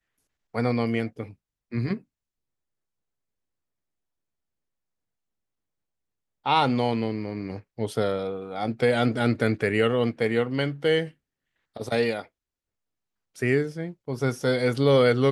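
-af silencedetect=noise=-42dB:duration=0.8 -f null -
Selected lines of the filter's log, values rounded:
silence_start: 1.99
silence_end: 6.46 | silence_duration: 4.47
silence_start: 12.26
silence_end: 13.36 | silence_duration: 1.10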